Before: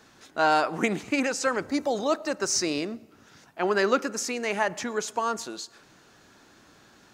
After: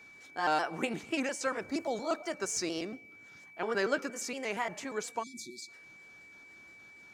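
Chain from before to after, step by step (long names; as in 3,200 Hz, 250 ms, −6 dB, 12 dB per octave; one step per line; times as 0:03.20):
pitch shifter gated in a rhythm +2 semitones, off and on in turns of 117 ms
time-frequency box erased 0:05.23–0:05.68, 380–3,300 Hz
steady tone 2,300 Hz −45 dBFS
level −7 dB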